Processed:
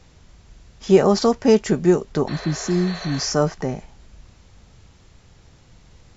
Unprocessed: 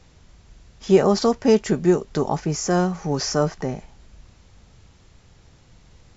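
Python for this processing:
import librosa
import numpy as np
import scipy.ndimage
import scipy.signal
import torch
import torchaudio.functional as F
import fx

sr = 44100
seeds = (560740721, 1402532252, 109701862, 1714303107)

y = fx.spec_repair(x, sr, seeds[0], start_s=2.3, length_s=0.89, low_hz=380.0, high_hz=4500.0, source='after')
y = fx.high_shelf(y, sr, hz=fx.line((2.11, 5200.0), (2.86, 4000.0)), db=-7.0, at=(2.11, 2.86), fade=0.02)
y = y * 10.0 ** (1.5 / 20.0)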